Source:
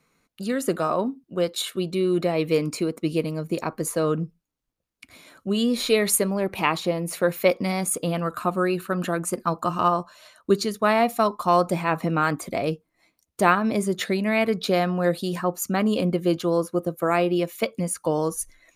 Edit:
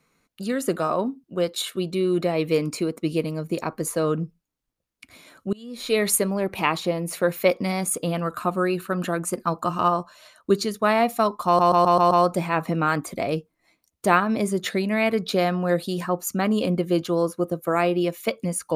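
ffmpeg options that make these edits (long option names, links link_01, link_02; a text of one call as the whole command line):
ffmpeg -i in.wav -filter_complex "[0:a]asplit=7[link_01][link_02][link_03][link_04][link_05][link_06][link_07];[link_01]atrim=end=5.53,asetpts=PTS-STARTPTS,afade=type=out:start_time=5.526:duration=0.004:curve=hsin:silence=0.0668344[link_08];[link_02]atrim=start=5.53:end=11.592,asetpts=PTS-STARTPTS,afade=type=in:duration=0.46:curve=qua:silence=0.0668344[link_09];[link_03]atrim=start=11.458:end=11.592[link_10];[link_04]atrim=start=11.458:end=11.592[link_11];[link_05]atrim=start=11.458:end=11.592[link_12];[link_06]atrim=start=11.458:end=11.592[link_13];[link_07]atrim=start=11.458[link_14];[link_08][link_09]concat=n=2:v=0:a=1[link_15];[link_15][link_10]acrossfade=duration=0.004:curve1=hsin:curve2=hsin[link_16];[link_16][link_11]acrossfade=duration=0.004:curve1=hsin:curve2=hsin[link_17];[link_17][link_12]acrossfade=duration=0.004:curve1=hsin:curve2=hsin[link_18];[link_18][link_13]acrossfade=duration=0.004:curve1=hsin:curve2=hsin[link_19];[link_19][link_14]acrossfade=duration=0.004:curve1=hsin:curve2=hsin" out.wav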